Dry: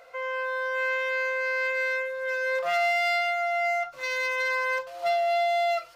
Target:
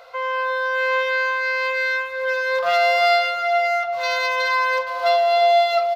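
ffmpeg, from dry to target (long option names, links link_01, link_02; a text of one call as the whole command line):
ffmpeg -i in.wav -filter_complex "[0:a]equalizer=frequency=250:width_type=o:width=1:gain=-9,equalizer=frequency=1000:width_type=o:width=1:gain=6,equalizer=frequency=2000:width_type=o:width=1:gain=-4,equalizer=frequency=4000:width_type=o:width=1:gain=8,equalizer=frequency=8000:width_type=o:width=1:gain=-6,asplit=2[link_01][link_02];[link_02]adelay=354,lowpass=frequency=800:poles=1,volume=-3dB,asplit=2[link_03][link_04];[link_04]adelay=354,lowpass=frequency=800:poles=1,volume=0.52,asplit=2[link_05][link_06];[link_06]adelay=354,lowpass=frequency=800:poles=1,volume=0.52,asplit=2[link_07][link_08];[link_08]adelay=354,lowpass=frequency=800:poles=1,volume=0.52,asplit=2[link_09][link_10];[link_10]adelay=354,lowpass=frequency=800:poles=1,volume=0.52,asplit=2[link_11][link_12];[link_12]adelay=354,lowpass=frequency=800:poles=1,volume=0.52,asplit=2[link_13][link_14];[link_14]adelay=354,lowpass=frequency=800:poles=1,volume=0.52[link_15];[link_03][link_05][link_07][link_09][link_11][link_13][link_15]amix=inputs=7:normalize=0[link_16];[link_01][link_16]amix=inputs=2:normalize=0,volume=5.5dB" out.wav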